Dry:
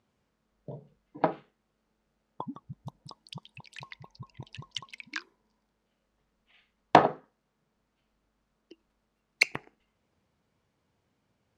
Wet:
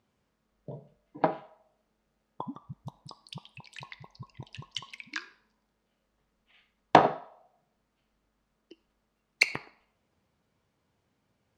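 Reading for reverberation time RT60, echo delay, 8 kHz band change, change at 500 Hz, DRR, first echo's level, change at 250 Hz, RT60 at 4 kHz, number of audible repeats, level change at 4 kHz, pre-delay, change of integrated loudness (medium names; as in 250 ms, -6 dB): 0.75 s, no echo, 0.0 dB, 0.0 dB, 11.0 dB, no echo, 0.0 dB, 0.50 s, no echo, +0.5 dB, 4 ms, 0.0 dB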